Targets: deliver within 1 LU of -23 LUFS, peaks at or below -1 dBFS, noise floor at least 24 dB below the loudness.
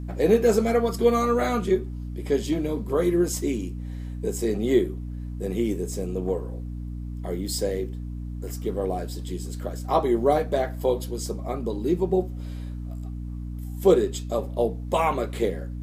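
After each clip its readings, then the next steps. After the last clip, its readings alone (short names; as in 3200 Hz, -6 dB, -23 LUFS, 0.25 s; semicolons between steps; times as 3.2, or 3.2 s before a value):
hum 60 Hz; harmonics up to 300 Hz; hum level -31 dBFS; loudness -26.0 LUFS; peak -6.0 dBFS; loudness target -23.0 LUFS
-> de-hum 60 Hz, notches 5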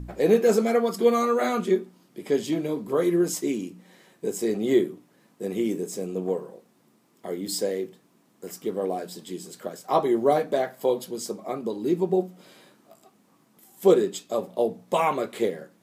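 hum none; loudness -25.5 LUFS; peak -7.0 dBFS; loudness target -23.0 LUFS
-> gain +2.5 dB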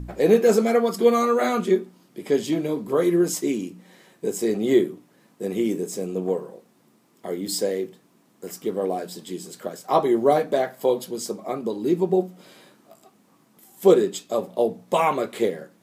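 loudness -23.0 LUFS; peak -4.5 dBFS; noise floor -60 dBFS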